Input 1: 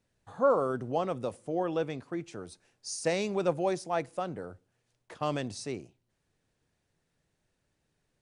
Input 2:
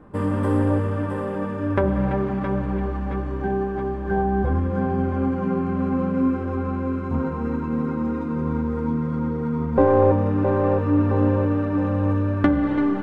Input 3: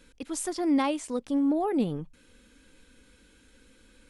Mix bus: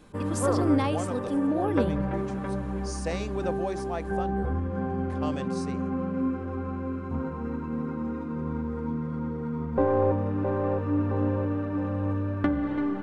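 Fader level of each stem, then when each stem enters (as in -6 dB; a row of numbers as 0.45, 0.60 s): -3.5, -7.0, -1.5 dB; 0.00, 0.00, 0.00 s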